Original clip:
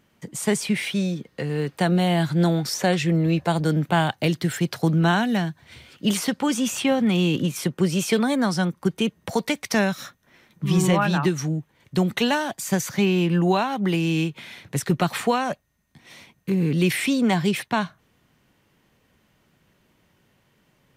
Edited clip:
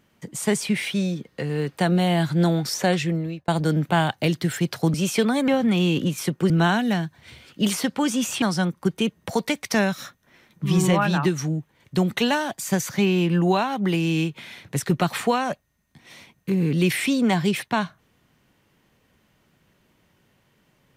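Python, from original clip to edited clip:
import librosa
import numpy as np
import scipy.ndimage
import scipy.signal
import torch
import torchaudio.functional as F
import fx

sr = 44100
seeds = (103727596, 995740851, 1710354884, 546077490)

y = fx.edit(x, sr, fx.fade_out_span(start_s=2.95, length_s=0.53),
    fx.swap(start_s=4.94, length_s=1.92, other_s=7.88, other_length_s=0.54), tone=tone)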